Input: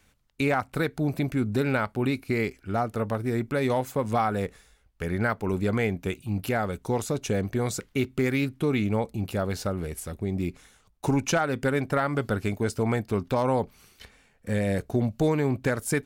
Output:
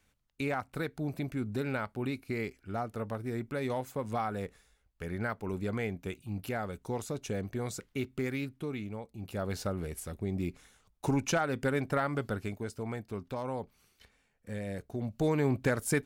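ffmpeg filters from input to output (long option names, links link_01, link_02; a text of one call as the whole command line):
ffmpeg -i in.wav -af "volume=12.5dB,afade=type=out:start_time=8.22:duration=0.88:silence=0.375837,afade=type=in:start_time=9.1:duration=0.44:silence=0.251189,afade=type=out:start_time=12.02:duration=0.68:silence=0.446684,afade=type=in:start_time=14.97:duration=0.47:silence=0.354813" out.wav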